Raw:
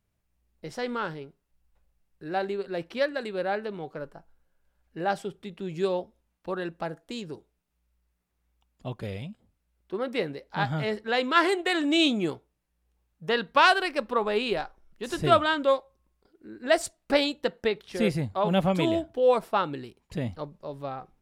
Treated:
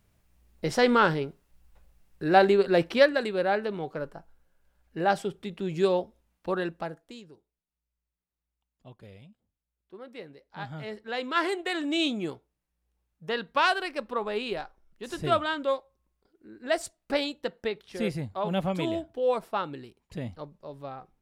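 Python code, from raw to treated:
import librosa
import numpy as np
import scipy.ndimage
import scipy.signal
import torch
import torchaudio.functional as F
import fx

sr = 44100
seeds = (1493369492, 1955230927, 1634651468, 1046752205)

y = fx.gain(x, sr, db=fx.line((2.76, 10.0), (3.35, 3.0), (6.6, 3.0), (7.02, -5.0), (7.33, -14.0), (10.22, -14.0), (11.44, -4.5)))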